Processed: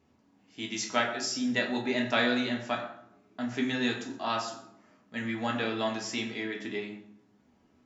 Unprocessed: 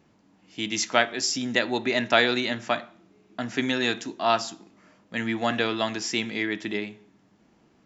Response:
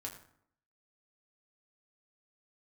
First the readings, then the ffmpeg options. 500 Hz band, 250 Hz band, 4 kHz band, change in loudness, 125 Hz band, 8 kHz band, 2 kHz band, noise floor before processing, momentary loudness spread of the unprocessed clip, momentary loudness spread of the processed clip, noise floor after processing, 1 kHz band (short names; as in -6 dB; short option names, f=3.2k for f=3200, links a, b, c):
-6.0 dB, -2.5 dB, -6.5 dB, -5.0 dB, -3.0 dB, n/a, -5.5 dB, -62 dBFS, 12 LU, 13 LU, -66 dBFS, -6.0 dB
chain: -filter_complex "[1:a]atrim=start_sample=2205,asetrate=38367,aresample=44100[a];[0:a][a]afir=irnorm=-1:irlink=0,volume=-4dB"